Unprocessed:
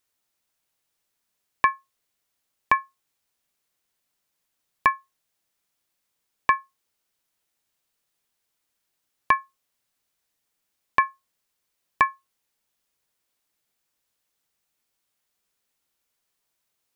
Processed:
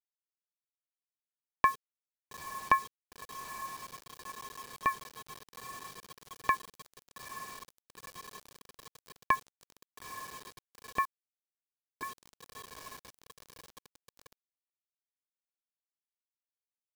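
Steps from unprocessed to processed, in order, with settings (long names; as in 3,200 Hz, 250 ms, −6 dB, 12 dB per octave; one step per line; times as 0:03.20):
rotating-speaker cabinet horn 1 Hz, later 7.5 Hz, at 0:03.20
on a send: feedback delay with all-pass diffusion 909 ms, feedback 69%, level −13 dB
on the sum: bit reduction 7 bits
0:11.05–0:12.03: comparator with hysteresis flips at −25.5 dBFS
parametric band 2,200 Hz −7 dB 1.7 octaves
level −1.5 dB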